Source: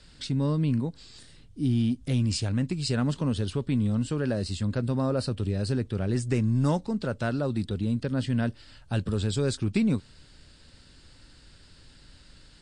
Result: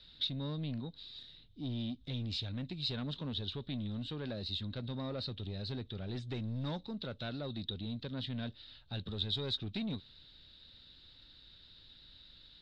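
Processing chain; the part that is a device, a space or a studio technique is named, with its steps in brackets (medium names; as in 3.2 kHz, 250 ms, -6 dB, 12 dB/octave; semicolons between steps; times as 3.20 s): overdriven synthesiser ladder filter (saturation -21.5 dBFS, distortion -16 dB; four-pole ladder low-pass 3.9 kHz, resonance 85%); trim +1.5 dB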